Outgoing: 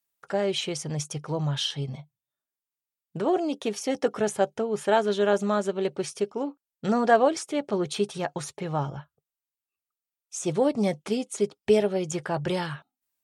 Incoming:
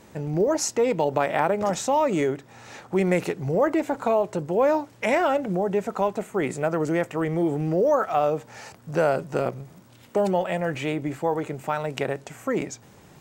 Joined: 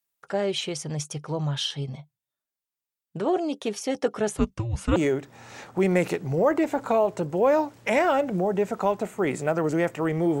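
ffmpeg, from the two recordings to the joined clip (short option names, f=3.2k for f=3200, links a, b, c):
-filter_complex "[0:a]asettb=1/sr,asplit=3[a][b][c];[a]atrim=end=4.374[d];[b]atrim=start=4.37:end=4.96,asetpts=PTS-STARTPTS,afade=t=in:d=0.004:c=qsin,afade=t=out:st=0.586:d=0.004:c=qsin,afreqshift=-340[e];[c]atrim=start=4.956[f];[d][e]acrossfade=d=0.004:c1=hsin:c2=qsin[g];[g][f]acrossfade=d=0.004:c1=qsin:c2=hsin,apad=whole_dur=10.4,atrim=end=10.4,atrim=end=4.962[h];[1:a]atrim=start=2.118:end=7.56[i];[h][i]acrossfade=d=0.004:c1=hsin:c2=hsin"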